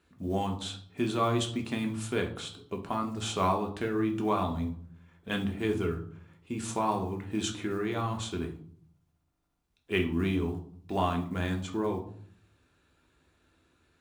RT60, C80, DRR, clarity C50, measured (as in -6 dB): 0.55 s, 14.5 dB, 2.0 dB, 10.5 dB